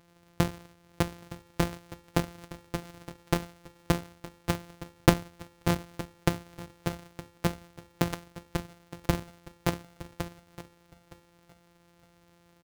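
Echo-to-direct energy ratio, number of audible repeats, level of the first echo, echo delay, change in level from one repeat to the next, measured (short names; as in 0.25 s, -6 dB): -17.0 dB, 2, -17.0 dB, 0.915 s, -14.0 dB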